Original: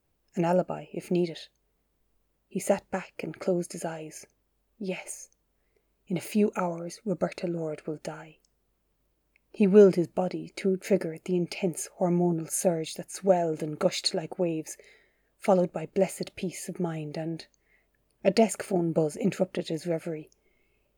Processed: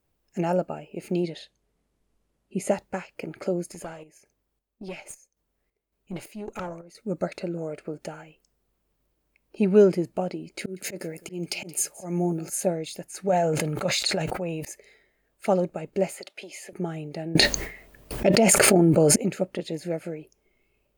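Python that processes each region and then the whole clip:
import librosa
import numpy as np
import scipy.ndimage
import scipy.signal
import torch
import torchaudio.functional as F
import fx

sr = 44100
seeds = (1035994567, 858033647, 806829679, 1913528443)

y = fx.chain(x, sr, fx.lowpass(hz=12000.0, slope=24),
    fx.peak_eq(hz=190.0, db=3.5, octaves=1.7), at=(1.24, 2.71))
y = fx.chain(y, sr, fx.chopper(hz=1.8, depth_pct=65, duty_pct=60),
    fx.tube_stage(drive_db=26.0, bias=0.6), at=(3.7, 6.95))
y = fx.chain(y, sr, fx.auto_swell(attack_ms=181.0),
    fx.high_shelf(hz=3400.0, db=11.0),
    fx.echo_single(ms=174, db=-21.0), at=(10.59, 12.5))
y = fx.chain(y, sr, fx.peak_eq(hz=330.0, db=-9.0, octaves=1.1),
    fx.sustainer(db_per_s=21.0), at=(13.29, 14.65))
y = fx.chain(y, sr, fx.highpass(hz=610.0, slope=12),
    fx.high_shelf(hz=7900.0, db=-7.5),
    fx.band_squash(depth_pct=100), at=(16.14, 16.73))
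y = fx.chain(y, sr, fx.gate_hold(open_db=-52.0, close_db=-62.0, hold_ms=71.0, range_db=-21, attack_ms=1.4, release_ms=100.0),
    fx.env_flatten(amount_pct=100), at=(17.35, 19.16))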